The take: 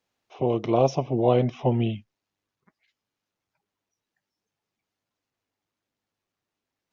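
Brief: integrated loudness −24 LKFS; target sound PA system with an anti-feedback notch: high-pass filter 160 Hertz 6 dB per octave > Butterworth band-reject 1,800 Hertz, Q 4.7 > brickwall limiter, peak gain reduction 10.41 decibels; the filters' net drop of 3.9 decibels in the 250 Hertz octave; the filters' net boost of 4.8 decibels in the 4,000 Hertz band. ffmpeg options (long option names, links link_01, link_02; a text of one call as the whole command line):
ffmpeg -i in.wav -af "highpass=frequency=160:poles=1,asuperstop=centerf=1800:order=8:qfactor=4.7,equalizer=frequency=250:width_type=o:gain=-3.5,equalizer=frequency=4000:width_type=o:gain=7.5,volume=6dB,alimiter=limit=-12.5dB:level=0:latency=1" out.wav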